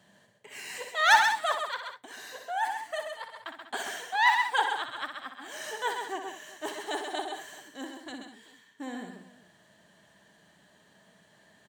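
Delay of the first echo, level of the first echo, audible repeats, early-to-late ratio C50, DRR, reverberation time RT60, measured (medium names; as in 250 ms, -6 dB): 61 ms, -7.5 dB, 4, no reverb, no reverb, no reverb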